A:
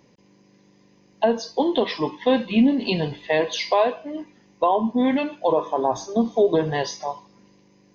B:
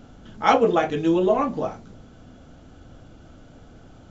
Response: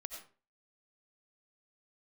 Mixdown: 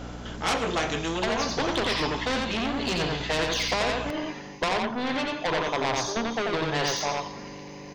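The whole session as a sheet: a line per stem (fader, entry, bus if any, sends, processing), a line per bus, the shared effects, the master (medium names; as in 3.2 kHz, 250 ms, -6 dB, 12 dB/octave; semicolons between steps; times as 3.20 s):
+1.0 dB, 0.00 s, no send, echo send -4 dB, de-esser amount 70%; treble shelf 2.9 kHz -6.5 dB; saturation -19.5 dBFS, distortion -10 dB
-3.0 dB, 0.00 s, send -8.5 dB, no echo send, saturation -15 dBFS, distortion -13 dB; hum 60 Hz, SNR 11 dB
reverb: on, RT60 0.40 s, pre-delay 50 ms
echo: delay 88 ms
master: gain riding within 5 dB 0.5 s; spectrum-flattening compressor 2:1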